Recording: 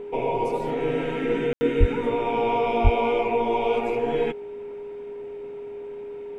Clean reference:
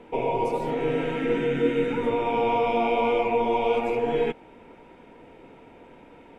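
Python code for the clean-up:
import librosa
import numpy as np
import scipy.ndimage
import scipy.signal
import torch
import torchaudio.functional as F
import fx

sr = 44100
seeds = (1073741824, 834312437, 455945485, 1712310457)

y = fx.notch(x, sr, hz=410.0, q=30.0)
y = fx.fix_deplosive(y, sr, at_s=(1.79, 2.83))
y = fx.fix_ambience(y, sr, seeds[0], print_start_s=4.67, print_end_s=5.17, start_s=1.53, end_s=1.61)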